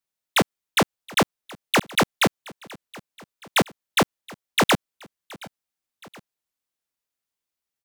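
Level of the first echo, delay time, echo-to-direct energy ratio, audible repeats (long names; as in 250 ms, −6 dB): −22.0 dB, 722 ms, −21.0 dB, 2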